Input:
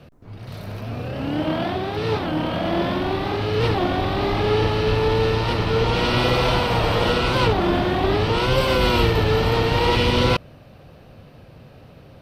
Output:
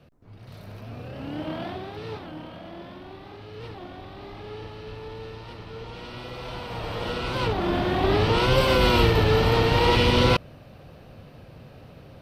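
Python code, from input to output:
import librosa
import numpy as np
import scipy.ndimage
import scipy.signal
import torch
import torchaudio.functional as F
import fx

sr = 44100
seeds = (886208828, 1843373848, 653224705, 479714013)

y = fx.gain(x, sr, db=fx.line((1.69, -9.0), (2.77, -19.0), (6.29, -19.0), (6.83, -12.5), (8.18, -1.0)))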